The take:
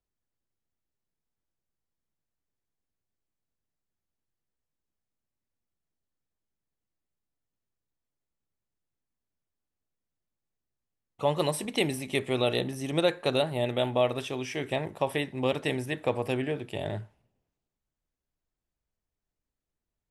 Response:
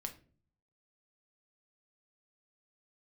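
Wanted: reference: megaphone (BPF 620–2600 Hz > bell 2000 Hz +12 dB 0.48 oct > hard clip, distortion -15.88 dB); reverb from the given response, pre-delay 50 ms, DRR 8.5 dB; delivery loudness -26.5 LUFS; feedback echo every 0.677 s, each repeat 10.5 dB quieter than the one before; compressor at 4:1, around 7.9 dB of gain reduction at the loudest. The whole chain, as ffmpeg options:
-filter_complex "[0:a]acompressor=threshold=-30dB:ratio=4,aecho=1:1:677|1354|2031:0.299|0.0896|0.0269,asplit=2[a][b];[1:a]atrim=start_sample=2205,adelay=50[c];[b][c]afir=irnorm=-1:irlink=0,volume=-6dB[d];[a][d]amix=inputs=2:normalize=0,highpass=620,lowpass=2.6k,equalizer=f=2k:t=o:w=0.48:g=12,asoftclip=type=hard:threshold=-27dB,volume=10dB"

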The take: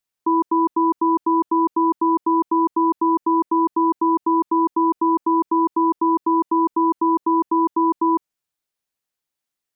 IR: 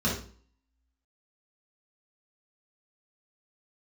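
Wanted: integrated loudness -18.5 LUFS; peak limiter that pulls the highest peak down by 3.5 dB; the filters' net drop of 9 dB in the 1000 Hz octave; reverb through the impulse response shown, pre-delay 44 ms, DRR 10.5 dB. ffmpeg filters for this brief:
-filter_complex "[0:a]equalizer=f=1k:t=o:g=-9,alimiter=limit=-18.5dB:level=0:latency=1,asplit=2[a][b];[1:a]atrim=start_sample=2205,adelay=44[c];[b][c]afir=irnorm=-1:irlink=0,volume=-21dB[d];[a][d]amix=inputs=2:normalize=0,volume=6.5dB"

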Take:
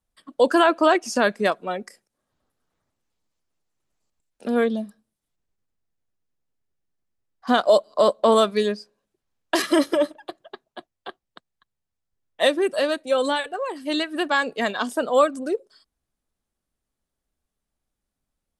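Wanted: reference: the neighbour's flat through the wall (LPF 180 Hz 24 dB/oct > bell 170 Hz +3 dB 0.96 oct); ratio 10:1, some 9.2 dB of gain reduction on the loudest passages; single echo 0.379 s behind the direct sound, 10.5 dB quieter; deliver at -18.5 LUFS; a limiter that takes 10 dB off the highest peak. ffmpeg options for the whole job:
-af "acompressor=threshold=-21dB:ratio=10,alimiter=limit=-18.5dB:level=0:latency=1,lowpass=f=180:w=0.5412,lowpass=f=180:w=1.3066,equalizer=f=170:t=o:w=0.96:g=3,aecho=1:1:379:0.299,volume=28dB"

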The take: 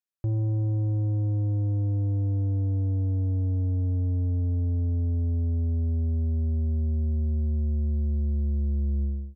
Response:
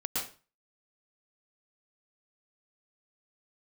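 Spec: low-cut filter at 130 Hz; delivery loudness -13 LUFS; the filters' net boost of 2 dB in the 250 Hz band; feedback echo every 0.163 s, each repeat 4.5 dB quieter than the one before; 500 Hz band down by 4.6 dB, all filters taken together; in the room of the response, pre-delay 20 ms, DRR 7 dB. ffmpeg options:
-filter_complex "[0:a]highpass=130,equalizer=f=250:t=o:g=5,equalizer=f=500:t=o:g=-9,aecho=1:1:163|326|489|652|815|978|1141|1304|1467:0.596|0.357|0.214|0.129|0.0772|0.0463|0.0278|0.0167|0.01,asplit=2[a][b];[1:a]atrim=start_sample=2205,adelay=20[c];[b][c]afir=irnorm=-1:irlink=0,volume=-12dB[d];[a][d]amix=inputs=2:normalize=0,volume=16dB"

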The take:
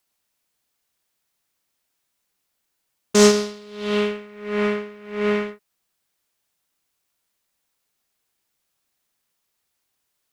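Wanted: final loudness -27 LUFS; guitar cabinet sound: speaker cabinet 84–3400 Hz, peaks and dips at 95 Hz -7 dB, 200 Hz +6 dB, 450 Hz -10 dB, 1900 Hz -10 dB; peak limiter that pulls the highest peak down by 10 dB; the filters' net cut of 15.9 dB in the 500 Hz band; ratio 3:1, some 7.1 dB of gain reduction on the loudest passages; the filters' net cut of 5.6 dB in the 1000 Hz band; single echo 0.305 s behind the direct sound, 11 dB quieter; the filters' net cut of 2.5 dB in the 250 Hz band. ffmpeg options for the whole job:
-af "equalizer=f=250:t=o:g=-8,equalizer=f=500:t=o:g=-9,equalizer=f=1k:t=o:g=-3.5,acompressor=threshold=-24dB:ratio=3,alimiter=limit=-21.5dB:level=0:latency=1,highpass=84,equalizer=f=95:t=q:w=4:g=-7,equalizer=f=200:t=q:w=4:g=6,equalizer=f=450:t=q:w=4:g=-10,equalizer=f=1.9k:t=q:w=4:g=-10,lowpass=f=3.4k:w=0.5412,lowpass=f=3.4k:w=1.3066,aecho=1:1:305:0.282,volume=7.5dB"

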